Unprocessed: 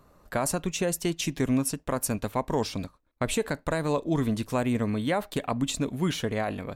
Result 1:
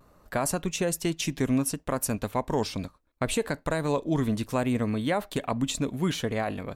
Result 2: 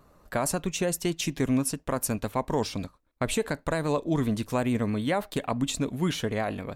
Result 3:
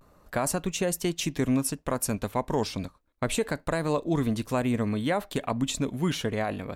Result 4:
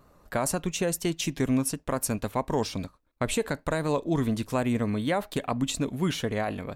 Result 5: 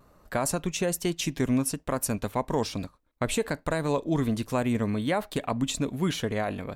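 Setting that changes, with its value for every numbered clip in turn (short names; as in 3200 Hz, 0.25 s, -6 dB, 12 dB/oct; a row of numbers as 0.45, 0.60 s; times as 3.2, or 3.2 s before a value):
vibrato, rate: 0.68, 9.4, 0.31, 4.2, 1.2 Hz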